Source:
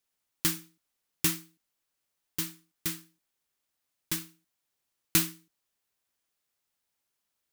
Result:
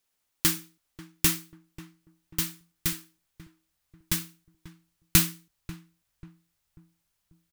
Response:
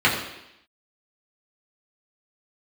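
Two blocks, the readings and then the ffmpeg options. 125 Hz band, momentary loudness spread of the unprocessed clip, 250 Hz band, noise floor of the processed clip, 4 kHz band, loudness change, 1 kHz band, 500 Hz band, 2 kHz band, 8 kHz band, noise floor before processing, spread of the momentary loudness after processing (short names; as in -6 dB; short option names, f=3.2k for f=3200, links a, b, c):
+7.0 dB, 13 LU, +3.5 dB, -78 dBFS, +4.0 dB, +4.0 dB, +4.0 dB, +2.0 dB, +4.0 dB, +4.0 dB, -83 dBFS, 23 LU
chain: -filter_complex "[0:a]asubboost=boost=6.5:cutoff=110,asplit=2[a][b];[b]adelay=540,lowpass=f=1k:p=1,volume=-14.5dB,asplit=2[c][d];[d]adelay=540,lowpass=f=1k:p=1,volume=0.43,asplit=2[e][f];[f]adelay=540,lowpass=f=1k:p=1,volume=0.43,asplit=2[g][h];[h]adelay=540,lowpass=f=1k:p=1,volume=0.43[i];[c][e][g][i]amix=inputs=4:normalize=0[j];[a][j]amix=inputs=2:normalize=0,volume=4dB"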